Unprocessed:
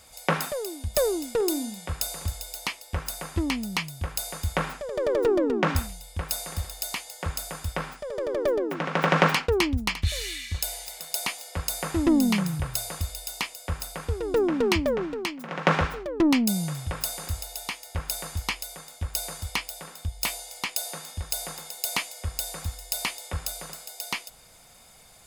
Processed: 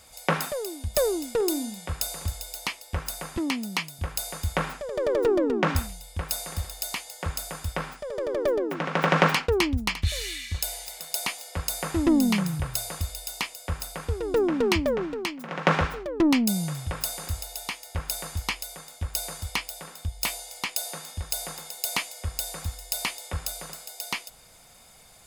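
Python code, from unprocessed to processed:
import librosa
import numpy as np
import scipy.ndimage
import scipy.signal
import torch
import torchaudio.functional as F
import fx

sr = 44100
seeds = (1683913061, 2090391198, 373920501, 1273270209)

y = fx.highpass(x, sr, hz=180.0, slope=24, at=(3.37, 3.99))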